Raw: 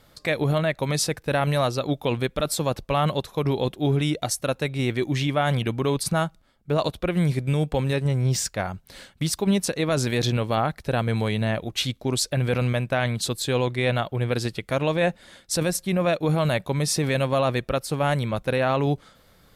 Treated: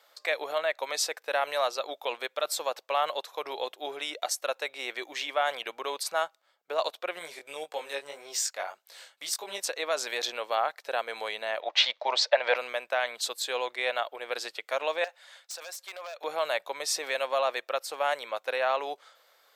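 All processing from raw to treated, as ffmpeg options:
-filter_complex "[0:a]asettb=1/sr,asplit=3[a][b][c];[a]atrim=end=7.194[d];[b]atrim=start=7.19:end=9.62,asetpts=PTS-STARTPTS,afade=t=in:d=0.004:c=qsin,afade=t=out:st=2.426:d=0.004:c=qsin,equalizer=f=9.6k:w=0.52:g=5.5,flanger=delay=18:depth=4:speed=1.8[e];[c]atrim=start=9.616[f];[d][e]acrossfade=d=0.004:c1=hsin:c2=qsin[g];[g][f]acrossfade=d=0.004:c1=qsin:c2=hsin,asettb=1/sr,asplit=3[h][i][j];[h]atrim=end=11.614[k];[i]atrim=start=11.61:end=12.56,asetpts=PTS-STARTPTS,afade=t=in:d=0.004:c=qsin,afade=t=out:st=0.946:d=0.004:c=qsin,acontrast=74,highpass=f=230:w=0.5412,highpass=f=230:w=1.3066,equalizer=f=270:t=q:w=4:g=-9,equalizer=f=390:t=q:w=4:g=-8,equalizer=f=610:t=q:w=4:g=8,equalizer=f=910:t=q:w=4:g=8,equalizer=f=1.9k:t=q:w=4:g=5,lowpass=f=4.9k:w=0.5412,lowpass=f=4.9k:w=1.3066[l];[j]atrim=start=12.556[m];[k][l]acrossfade=d=0.004:c1=hsin:c2=qsin[n];[n][m]acrossfade=d=0.004:c1=qsin:c2=hsin,asettb=1/sr,asplit=3[o][p][q];[o]atrim=end=15.044[r];[p]atrim=start=15.04:end=16.24,asetpts=PTS-STARTPTS,afade=t=in:d=0.004:c=qsin,afade=t=out:st=1.196:d=0.004:c=qsin,highpass=660,acompressor=threshold=-30dB:ratio=8:attack=3.2:release=140:knee=1:detection=peak,aeval=exprs='0.0398*(abs(mod(val(0)/0.0398+3,4)-2)-1)':c=same[s];[q]atrim=start=16.236[t];[r][s]acrossfade=d=0.004:c1=hsin:c2=qsin[u];[u][t]acrossfade=d=0.004:c1=qsin:c2=hsin,highpass=f=550:w=0.5412,highpass=f=550:w=1.3066,equalizer=f=10k:t=o:w=0.23:g=-10.5,volume=-2.5dB"

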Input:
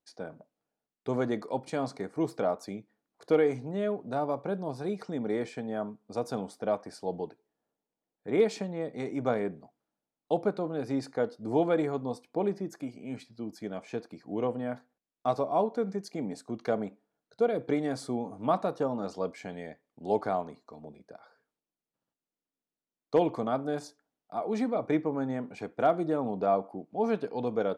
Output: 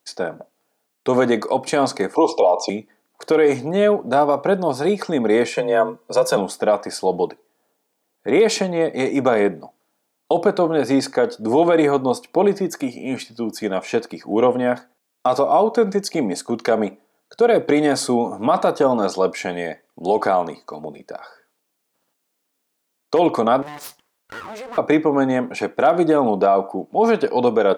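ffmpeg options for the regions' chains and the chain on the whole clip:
-filter_complex "[0:a]asettb=1/sr,asplit=3[a][b][c];[a]atrim=end=2.154[d];[b]atrim=start=2.15:end=2.7,asetpts=PTS-STARTPTS,afade=t=in:d=0.004:c=qsin,afade=t=out:st=0.546:d=0.004:c=qsin,highpass=400,equalizer=f=510:t=q:w=4:g=5,equalizer=f=910:t=q:w=4:g=9,equalizer=f=4.2k:t=q:w=4:g=-8,lowpass=f=5.7k:w=0.5412,lowpass=f=5.7k:w=1.3066,acontrast=83,asuperstop=centerf=1600:order=20:qfactor=1.3[e];[c]atrim=start=2.696[f];[d][e]acrossfade=d=0.004:c1=hsin:c2=qsin[g];[g][f]acrossfade=d=0.004:c1=qsin:c2=hsin,asettb=1/sr,asplit=3[h][i][j];[h]atrim=end=5.544[k];[i]atrim=start=5.54:end=6.37,asetpts=PTS-STARTPTS,afade=t=in:d=0.004:c=qsin,afade=t=out:st=0.826:d=0.004:c=qsin,aecho=1:1:2:0.72,atrim=end_sample=36603,afreqshift=34[l];[j]atrim=start=6.366[m];[k][l]acrossfade=d=0.004:c1=hsin:c2=qsin[n];[n][m]acrossfade=d=0.004:c1=qsin:c2=hsin,asettb=1/sr,asplit=3[o][p][q];[o]atrim=end=23.624[r];[p]atrim=start=23.62:end=24.78,asetpts=PTS-STARTPTS,afade=t=in:d=0.004:c=qsin,afade=t=out:st=1.156:d=0.004:c=qsin,acompressor=threshold=-44dB:ratio=4:attack=3.2:release=140:knee=1:detection=peak,aeval=exprs='abs(val(0))':c=same[s];[q]atrim=start=24.776[t];[r][s]acrossfade=d=0.004:c1=hsin:c2=qsin[u];[u][t]acrossfade=d=0.004:c1=qsin:c2=hsin,highpass=f=390:p=1,highshelf=f=7.6k:g=4.5,alimiter=level_in=23.5dB:limit=-1dB:release=50:level=0:latency=1,volume=-5.5dB"

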